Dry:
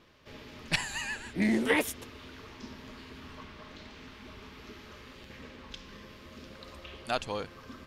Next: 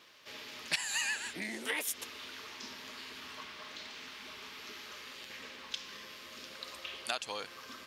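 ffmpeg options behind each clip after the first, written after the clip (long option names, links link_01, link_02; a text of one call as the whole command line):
ffmpeg -i in.wav -af "acompressor=threshold=-34dB:ratio=5,highpass=frequency=710:poles=1,highshelf=frequency=2400:gain=8.5,volume=1dB" out.wav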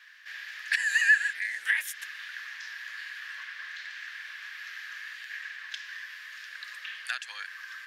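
ffmpeg -i in.wav -af "asoftclip=type=tanh:threshold=-19.5dB,highpass=frequency=1700:width_type=q:width=12,volume=-2.5dB" out.wav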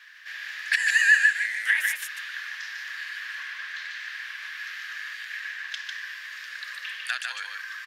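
ffmpeg -i in.wav -af "aecho=1:1:149:0.631,volume=3.5dB" out.wav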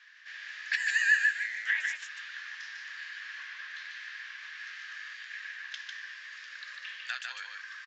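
ffmpeg -i in.wav -filter_complex "[0:a]asplit=2[link_01][link_02];[link_02]adelay=15,volume=-11.5dB[link_03];[link_01][link_03]amix=inputs=2:normalize=0,aresample=16000,aresample=44100,volume=-7dB" out.wav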